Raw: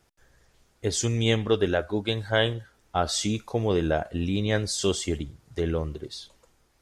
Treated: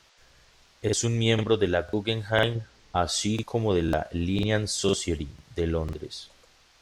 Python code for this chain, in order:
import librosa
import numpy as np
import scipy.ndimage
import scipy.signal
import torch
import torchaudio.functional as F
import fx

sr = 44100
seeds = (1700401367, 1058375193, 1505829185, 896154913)

y = fx.tilt_shelf(x, sr, db=6.0, hz=970.0, at=(2.55, 2.96))
y = fx.dmg_noise_band(y, sr, seeds[0], low_hz=480.0, high_hz=5900.0, level_db=-61.0)
y = fx.buffer_crackle(y, sr, first_s=0.34, period_s=0.5, block=2048, kind='repeat')